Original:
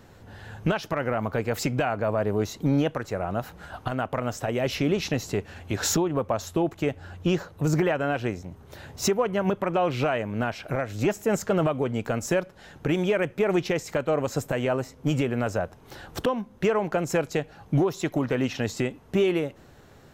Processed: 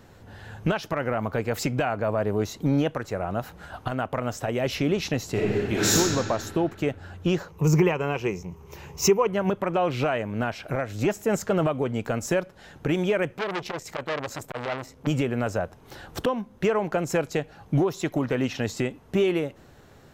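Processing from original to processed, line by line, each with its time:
5.31–5.95 reverb throw, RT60 2.3 s, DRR -6.5 dB
7.48–9.27 ripple EQ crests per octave 0.77, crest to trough 11 dB
13.37–15.07 core saturation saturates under 1900 Hz

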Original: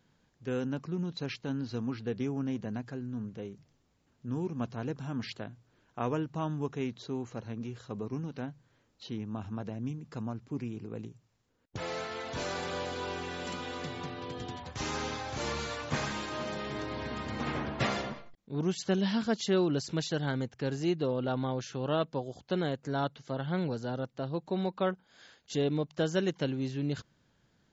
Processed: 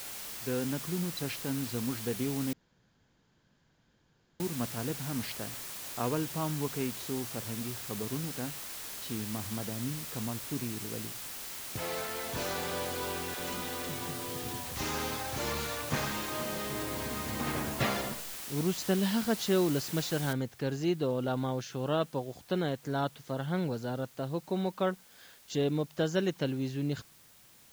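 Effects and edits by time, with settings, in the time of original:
2.53–4.4 room tone
13.34–14.77 dispersion lows, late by 55 ms, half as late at 460 Hz
20.33 noise floor step -42 dB -59 dB

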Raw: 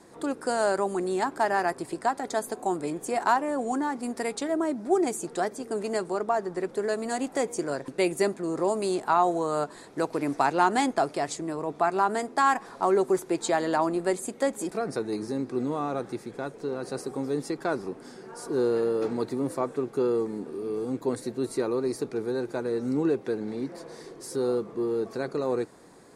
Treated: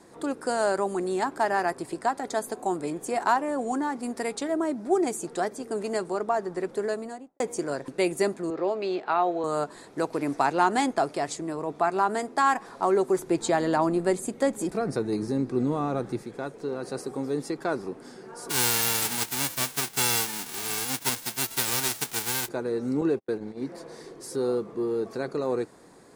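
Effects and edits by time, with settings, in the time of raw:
6.79–7.4 studio fade out
8.5–9.44 speaker cabinet 220–4300 Hz, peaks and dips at 240 Hz -8 dB, 990 Hz -6 dB, 2500 Hz +4 dB
13.19–16.23 low shelf 190 Hz +10.5 dB
18.49–22.47 spectral whitening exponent 0.1
23.01–23.63 gate -33 dBFS, range -44 dB

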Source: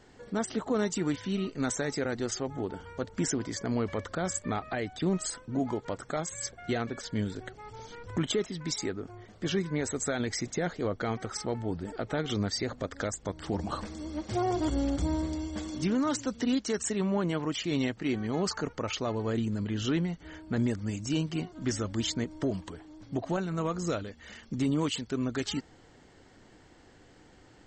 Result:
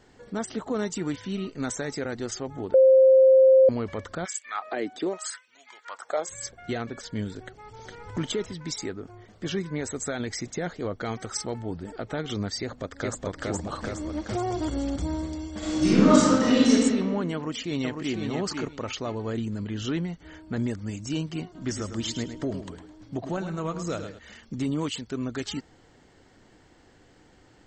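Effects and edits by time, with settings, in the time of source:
2.74–3.69 bleep 527 Hz -12 dBFS
4.24–6.27 LFO high-pass sine 1.2 Hz -> 0.43 Hz 270–2600 Hz
7.44–8.12 echo throw 0.41 s, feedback 15%, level -2 dB
11.04–11.59 high shelf 4400 Hz -> 6500 Hz +10.5 dB
12.6–13.22 echo throw 0.42 s, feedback 50%, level 0 dB
13.84–14.96 three-band squash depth 70%
15.58–16.71 reverb throw, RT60 1.7 s, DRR -11 dB
17.34–18.15 echo throw 0.5 s, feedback 20%, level -4.5 dB
21.44–24.19 feedback echo 0.106 s, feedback 28%, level -9 dB

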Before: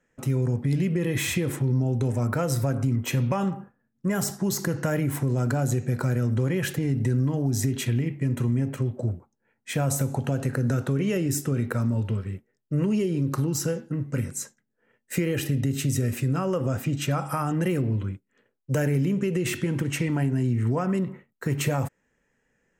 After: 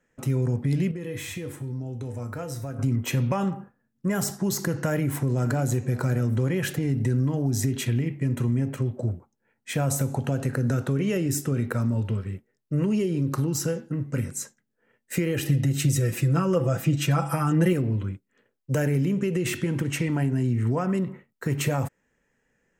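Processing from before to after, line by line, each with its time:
0.91–2.79 resonator 97 Hz, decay 0.35 s, harmonics odd, mix 70%
4.76–5.63 echo throw 0.59 s, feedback 35%, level -16.5 dB
15.47–17.73 comb 6 ms, depth 84%

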